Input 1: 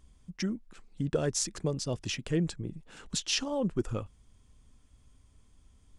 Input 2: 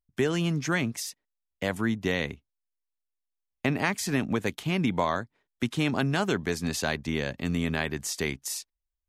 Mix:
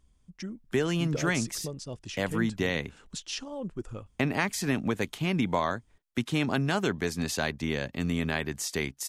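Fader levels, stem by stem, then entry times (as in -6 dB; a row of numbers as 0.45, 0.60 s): -6.0, -1.0 dB; 0.00, 0.55 s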